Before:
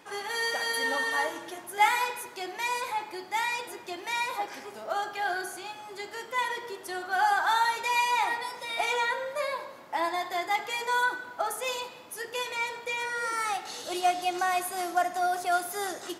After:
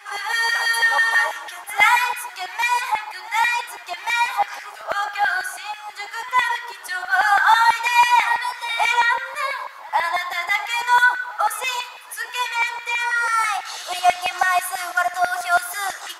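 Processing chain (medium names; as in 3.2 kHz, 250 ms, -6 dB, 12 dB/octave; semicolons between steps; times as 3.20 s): LFO high-pass saw down 6.1 Hz 780–2000 Hz; pre-echo 106 ms -19.5 dB; trim +6.5 dB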